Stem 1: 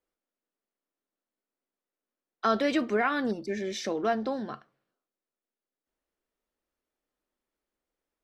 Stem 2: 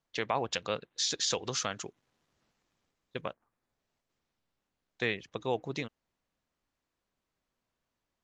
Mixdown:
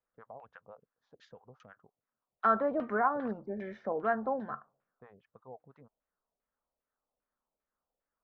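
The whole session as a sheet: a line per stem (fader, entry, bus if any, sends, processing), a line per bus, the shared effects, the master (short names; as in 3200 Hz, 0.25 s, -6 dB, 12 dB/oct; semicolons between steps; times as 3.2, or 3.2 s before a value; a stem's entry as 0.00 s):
-4.5 dB, 0.00 s, no send, dry
-15.0 dB, 0.00 s, no send, harmonic tremolo 6 Hz, depth 100%, crossover 620 Hz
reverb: off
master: bell 340 Hz -10 dB 0.44 oct; LFO low-pass saw down 2.5 Hz 570–2800 Hz; resonant high shelf 1800 Hz -8 dB, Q 1.5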